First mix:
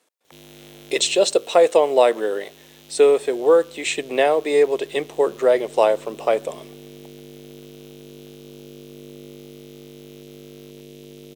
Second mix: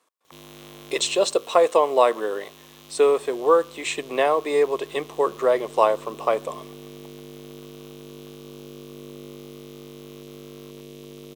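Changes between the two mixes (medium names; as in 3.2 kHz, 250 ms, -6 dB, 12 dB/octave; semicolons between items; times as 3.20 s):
speech -4.0 dB; master: add peaking EQ 1.1 kHz +13 dB 0.38 oct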